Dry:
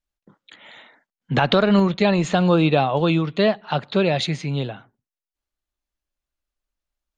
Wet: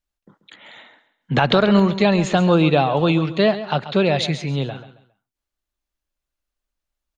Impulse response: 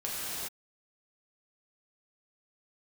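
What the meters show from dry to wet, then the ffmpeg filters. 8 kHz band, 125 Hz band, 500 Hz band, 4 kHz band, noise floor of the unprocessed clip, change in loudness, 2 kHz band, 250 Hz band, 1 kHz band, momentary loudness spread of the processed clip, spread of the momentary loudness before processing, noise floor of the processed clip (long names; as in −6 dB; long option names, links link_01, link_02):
can't be measured, +1.5 dB, +1.5 dB, +1.5 dB, below −85 dBFS, +1.5 dB, +1.5 dB, +1.5 dB, +1.5 dB, 9 LU, 9 LU, below −85 dBFS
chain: -af "aecho=1:1:136|272|408:0.211|0.0634|0.019,volume=1.5dB"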